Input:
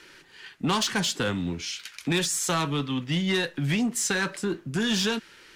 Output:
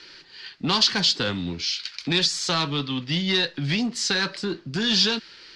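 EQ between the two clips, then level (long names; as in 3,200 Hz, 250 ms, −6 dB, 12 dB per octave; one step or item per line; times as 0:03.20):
low-pass with resonance 4,600 Hz, resonance Q 4.9
0.0 dB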